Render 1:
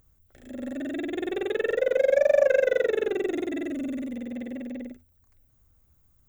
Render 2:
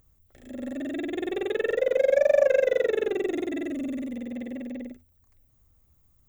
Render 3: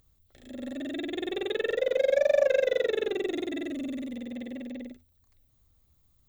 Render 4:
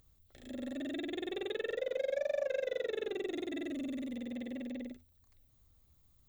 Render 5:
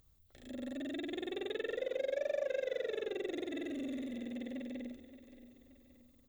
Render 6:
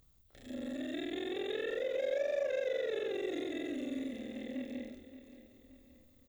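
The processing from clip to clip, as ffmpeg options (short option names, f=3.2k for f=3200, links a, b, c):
-af "bandreject=f=1.5k:w=9"
-af "equalizer=f=3.9k:t=o:w=0.76:g=10,volume=-3dB"
-af "acompressor=threshold=-38dB:ratio=2,volume=-1dB"
-af "aecho=1:1:575|1150|1725|2300:0.188|0.0866|0.0399|0.0183,volume=-1.5dB"
-filter_complex "[0:a]asplit=2[a][b];[b]adelay=27,volume=-2dB[c];[a][c]amix=inputs=2:normalize=0"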